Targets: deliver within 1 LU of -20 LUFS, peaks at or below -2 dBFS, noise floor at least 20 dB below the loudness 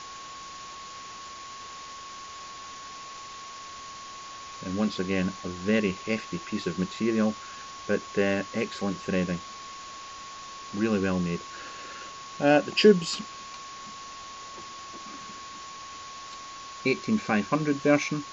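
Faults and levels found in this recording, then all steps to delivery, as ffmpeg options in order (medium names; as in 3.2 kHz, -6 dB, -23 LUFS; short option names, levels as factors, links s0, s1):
steady tone 1.1 kHz; tone level -41 dBFS; noise floor -42 dBFS; noise floor target -48 dBFS; loudness -27.5 LUFS; peak level -6.5 dBFS; loudness target -20.0 LUFS
-> -af "bandreject=f=1100:w=30"
-af "afftdn=nr=6:nf=-42"
-af "volume=2.37,alimiter=limit=0.794:level=0:latency=1"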